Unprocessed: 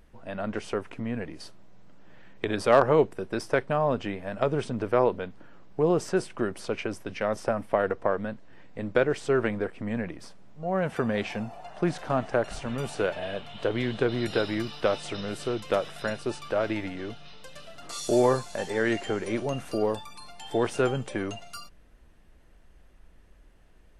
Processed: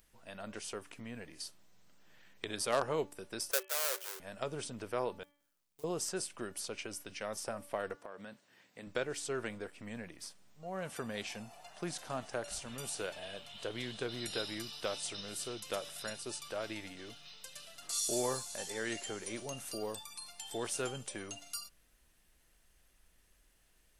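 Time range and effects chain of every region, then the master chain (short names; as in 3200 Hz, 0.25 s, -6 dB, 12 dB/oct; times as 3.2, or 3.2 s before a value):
3.51–4.2 half-waves squared off + rippled Chebyshev high-pass 370 Hz, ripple 9 dB
5.23–5.84 gate -32 dBFS, range -23 dB + short-mantissa float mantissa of 2-bit + compressor 3:1, threshold -53 dBFS
7.95–8.87 HPF 140 Hz + compressor, threshold -30 dBFS
whole clip: pre-emphasis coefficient 0.9; de-hum 288.8 Hz, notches 11; dynamic EQ 2000 Hz, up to -4 dB, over -56 dBFS, Q 0.88; gain +5 dB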